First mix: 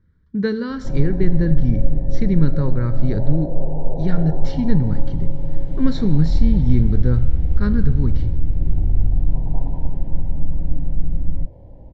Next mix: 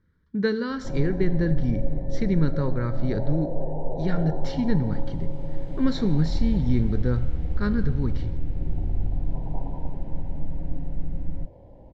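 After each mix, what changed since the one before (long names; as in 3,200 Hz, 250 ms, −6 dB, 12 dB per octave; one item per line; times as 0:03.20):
master: add low-shelf EQ 200 Hz −9.5 dB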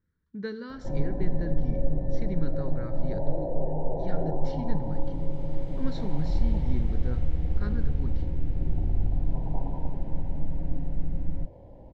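speech −11.0 dB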